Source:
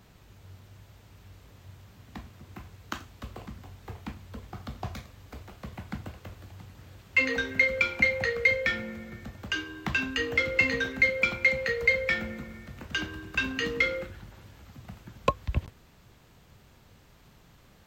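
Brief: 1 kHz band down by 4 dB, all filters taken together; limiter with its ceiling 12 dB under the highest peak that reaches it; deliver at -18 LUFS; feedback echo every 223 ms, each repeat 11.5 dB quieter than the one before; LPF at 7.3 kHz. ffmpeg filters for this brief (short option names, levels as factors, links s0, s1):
-af "lowpass=7300,equalizer=f=1000:t=o:g=-5,alimiter=limit=0.1:level=0:latency=1,aecho=1:1:223|446|669:0.266|0.0718|0.0194,volume=5.01"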